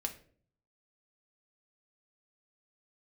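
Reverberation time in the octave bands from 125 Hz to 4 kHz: 0.90 s, 0.70 s, 0.60 s, 0.40 s, 0.40 s, 0.35 s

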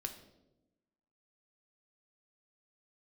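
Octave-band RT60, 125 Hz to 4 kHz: 1.2 s, 1.3 s, 1.2 s, 0.80 s, 0.60 s, 0.65 s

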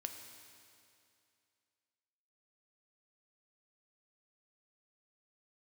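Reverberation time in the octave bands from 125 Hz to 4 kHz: 2.5 s, 2.5 s, 2.5 s, 2.5 s, 2.5 s, 2.4 s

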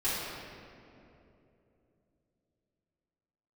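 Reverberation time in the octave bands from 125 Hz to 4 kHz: 4.0 s, 3.7 s, 3.5 s, 2.5 s, 2.1 s, 1.5 s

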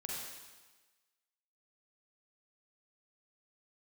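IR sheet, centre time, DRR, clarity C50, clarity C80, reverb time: 94 ms, -4.0 dB, -2.0 dB, 0.5 dB, 1.3 s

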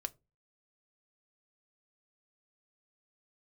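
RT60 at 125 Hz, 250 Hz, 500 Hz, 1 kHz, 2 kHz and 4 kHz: 0.45 s, 0.35 s, 0.30 s, 0.20 s, 0.20 s, 0.15 s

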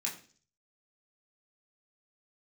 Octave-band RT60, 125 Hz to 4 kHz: 0.70 s, 0.55 s, 0.50 s, 0.35 s, 0.40 s, 0.55 s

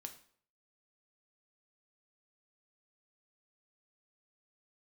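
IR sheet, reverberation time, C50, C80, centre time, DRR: 0.55 s, 11.5 dB, 15.5 dB, 10 ms, 5.5 dB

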